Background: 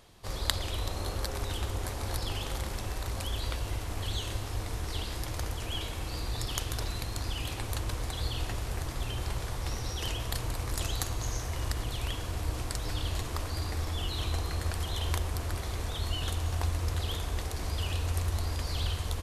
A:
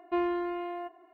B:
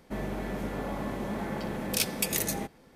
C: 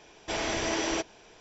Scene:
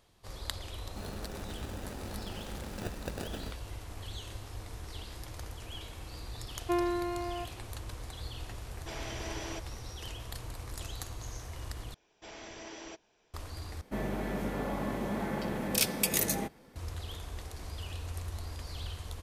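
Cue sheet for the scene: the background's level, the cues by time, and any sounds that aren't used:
background −8.5 dB
0:00.85: mix in B −11 dB + decimation without filtering 41×
0:06.57: mix in A −1 dB
0:08.58: mix in C −11.5 dB
0:11.94: overwrite with C −16.5 dB
0:13.81: overwrite with B −0.5 dB + high-shelf EQ 11,000 Hz +2.5 dB

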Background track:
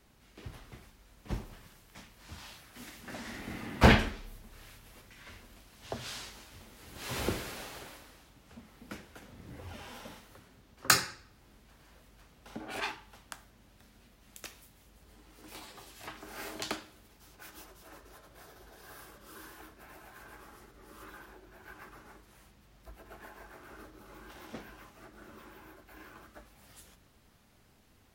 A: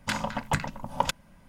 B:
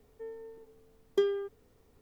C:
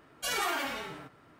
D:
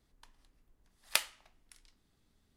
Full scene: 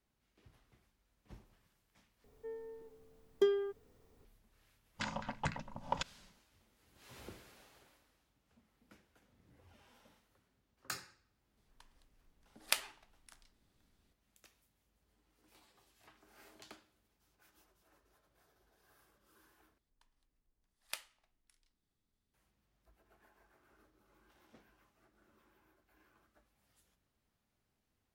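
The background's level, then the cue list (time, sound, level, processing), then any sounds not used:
background track −19 dB
0:02.24: overwrite with B −2.5 dB
0:04.92: mix in A −10.5 dB, fades 0.10 s + low-pass filter 7,100 Hz 24 dB per octave
0:11.57: mix in D −3 dB
0:19.78: overwrite with D −13.5 dB
not used: C

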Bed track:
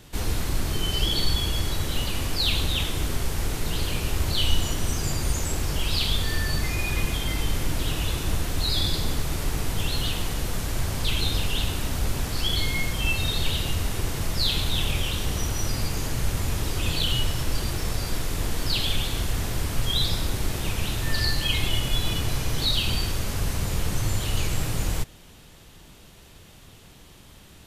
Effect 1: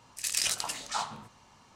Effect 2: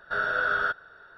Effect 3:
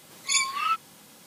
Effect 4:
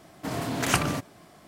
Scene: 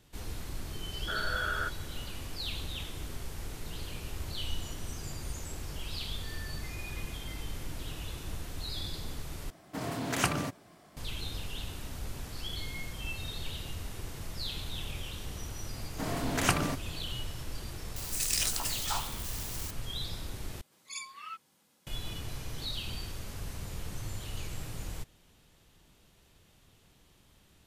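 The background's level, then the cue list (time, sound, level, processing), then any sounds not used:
bed track −13.5 dB
0:00.97: mix in 2 −8 dB
0:09.50: overwrite with 4 −5 dB
0:15.75: mix in 4 −3.5 dB
0:17.96: mix in 1 −3 dB + spike at every zero crossing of −28.5 dBFS
0:20.61: overwrite with 3 −17.5 dB

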